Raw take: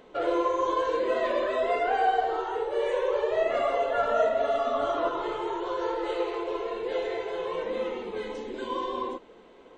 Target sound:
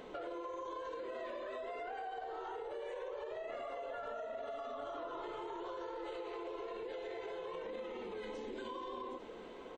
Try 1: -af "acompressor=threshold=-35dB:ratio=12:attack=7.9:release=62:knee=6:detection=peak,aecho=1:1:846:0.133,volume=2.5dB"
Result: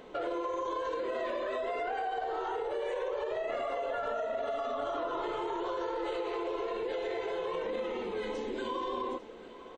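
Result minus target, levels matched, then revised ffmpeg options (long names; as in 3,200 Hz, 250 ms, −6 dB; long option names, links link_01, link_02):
downward compressor: peak gain reduction −9 dB
-af "acompressor=threshold=-45dB:ratio=12:attack=7.9:release=62:knee=6:detection=peak,aecho=1:1:846:0.133,volume=2.5dB"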